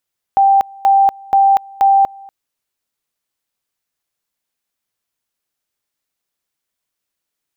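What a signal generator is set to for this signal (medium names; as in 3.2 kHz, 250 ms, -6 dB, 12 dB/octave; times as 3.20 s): two-level tone 786 Hz -7 dBFS, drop 26 dB, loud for 0.24 s, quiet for 0.24 s, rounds 4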